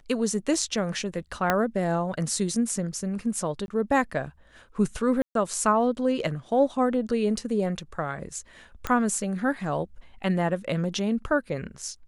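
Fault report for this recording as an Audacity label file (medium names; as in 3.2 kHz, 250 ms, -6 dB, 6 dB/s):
1.500000	1.500000	pop -8 dBFS
3.660000	3.680000	dropout 21 ms
5.220000	5.350000	dropout 132 ms
8.870000	8.870000	pop -13 dBFS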